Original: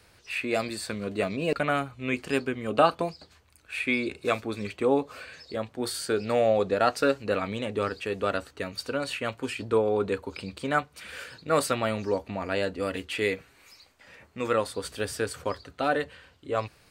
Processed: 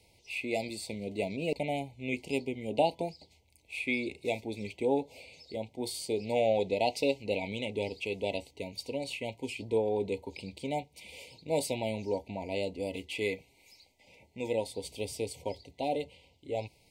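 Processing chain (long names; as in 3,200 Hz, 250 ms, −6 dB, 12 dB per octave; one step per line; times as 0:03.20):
brick-wall band-stop 970–2,000 Hz
0:06.35–0:08.52: dynamic equaliser 2,600 Hz, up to +6 dB, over −42 dBFS, Q 0.77
level −5 dB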